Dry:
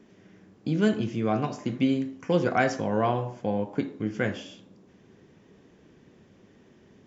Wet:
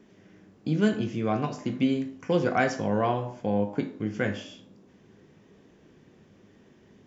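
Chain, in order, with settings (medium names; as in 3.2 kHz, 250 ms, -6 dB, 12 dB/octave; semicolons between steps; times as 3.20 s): feedback comb 51 Hz, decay 0.3 s, harmonics all, mix 60%; trim +3.5 dB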